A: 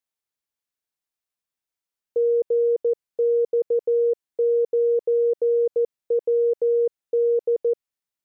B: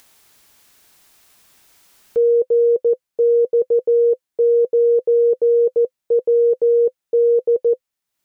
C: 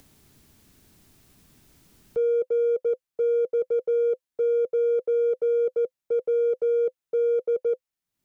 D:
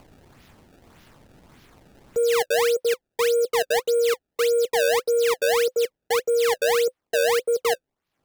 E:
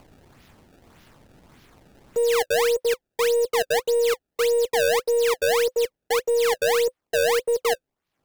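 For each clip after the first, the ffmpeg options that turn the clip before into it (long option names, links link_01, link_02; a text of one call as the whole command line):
ffmpeg -i in.wav -af "acompressor=mode=upward:threshold=-37dB:ratio=2.5,bandreject=frequency=510:width=13,volume=6.5dB" out.wav
ffmpeg -i in.wav -filter_complex "[0:a]acrossover=split=310|350[link_01][link_02][link_03];[link_01]acompressor=mode=upward:threshold=-36dB:ratio=2.5[link_04];[link_02]asoftclip=type=hard:threshold=-34.5dB[link_05];[link_04][link_05][link_03]amix=inputs=3:normalize=0,volume=-7dB" out.wav
ffmpeg -i in.wav -filter_complex "[0:a]asplit=2[link_01][link_02];[link_02]alimiter=level_in=4dB:limit=-24dB:level=0:latency=1:release=27,volume=-4dB,volume=-2dB[link_03];[link_01][link_03]amix=inputs=2:normalize=0,acrusher=samples=24:mix=1:aa=0.000001:lfo=1:lforange=38.4:lforate=1.7" out.wav
ffmpeg -i in.wav -af "aeval=exprs='0.158*(cos(1*acos(clip(val(0)/0.158,-1,1)))-cos(1*PI/2))+0.01*(cos(2*acos(clip(val(0)/0.158,-1,1)))-cos(2*PI/2))+0.00398*(cos(3*acos(clip(val(0)/0.158,-1,1)))-cos(3*PI/2))+0.00355*(cos(8*acos(clip(val(0)/0.158,-1,1)))-cos(8*PI/2))':channel_layout=same" out.wav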